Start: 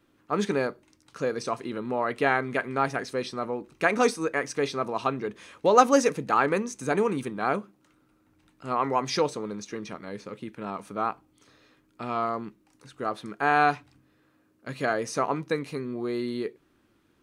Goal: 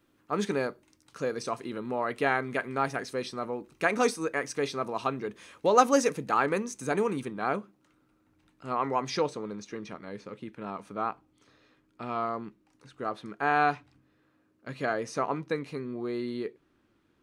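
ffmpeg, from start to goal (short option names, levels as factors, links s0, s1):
-af "asetnsamples=n=441:p=0,asendcmd='7.2 highshelf g -4.5;9.11 highshelf g -10',highshelf=f=8100:g=4.5,volume=0.708"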